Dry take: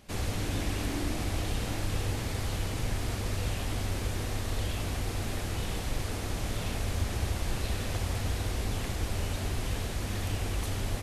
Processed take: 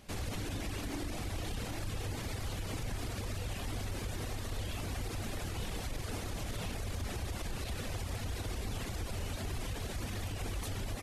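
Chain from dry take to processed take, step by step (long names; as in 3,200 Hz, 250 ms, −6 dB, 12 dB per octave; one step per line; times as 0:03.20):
reverb reduction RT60 0.68 s
brickwall limiter −29.5 dBFS, peak gain reduction 10.5 dB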